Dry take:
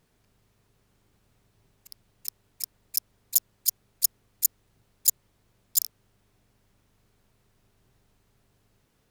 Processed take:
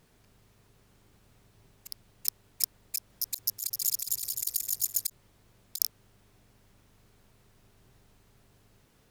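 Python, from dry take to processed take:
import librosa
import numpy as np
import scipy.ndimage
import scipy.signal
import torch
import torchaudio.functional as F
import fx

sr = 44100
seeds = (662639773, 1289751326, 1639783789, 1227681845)

y = fx.reverse_delay_fb(x, sr, ms=129, feedback_pct=73, wet_db=-3.5, at=(2.97, 5.07))
y = fx.over_compress(y, sr, threshold_db=-29.0, ratio=-0.5)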